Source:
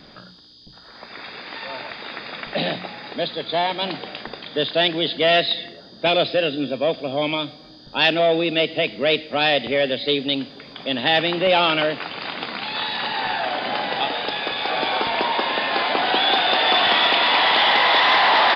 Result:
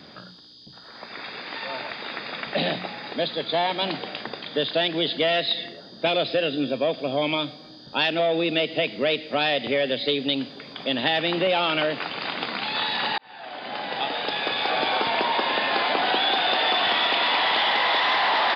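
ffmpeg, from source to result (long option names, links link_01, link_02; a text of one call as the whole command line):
ffmpeg -i in.wav -filter_complex "[0:a]asplit=2[link_01][link_02];[link_01]atrim=end=13.18,asetpts=PTS-STARTPTS,afade=type=out:start_time=13.176:duration=0.004:curve=hsin[link_03];[link_02]atrim=start=13.18,asetpts=PTS-STARTPTS,afade=type=in:duration=1.36[link_04];[link_03][link_04]concat=n=2:v=0:a=1,highpass=93,acompressor=threshold=-19dB:ratio=6" out.wav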